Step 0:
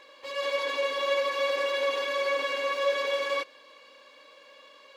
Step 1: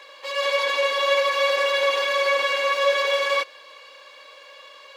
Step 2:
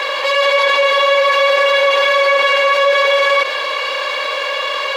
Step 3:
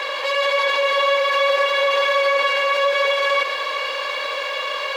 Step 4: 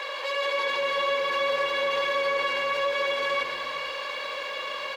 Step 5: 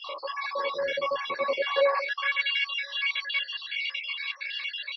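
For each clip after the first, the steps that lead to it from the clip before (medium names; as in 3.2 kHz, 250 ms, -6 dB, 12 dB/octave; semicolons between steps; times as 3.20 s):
Bessel high-pass 560 Hz, order 8; trim +8.5 dB
tone controls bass -11 dB, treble -7 dB; level flattener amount 70%; trim +6 dB
bit-crushed delay 144 ms, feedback 80%, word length 7-bit, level -13.5 dB; trim -6 dB
frequency-shifting echo 110 ms, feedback 59%, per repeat -100 Hz, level -18 dB; trim -8 dB
random holes in the spectrogram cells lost 53%; high-pass sweep 73 Hz -> 2.5 kHz, 1.00–2.44 s; MP3 24 kbps 24 kHz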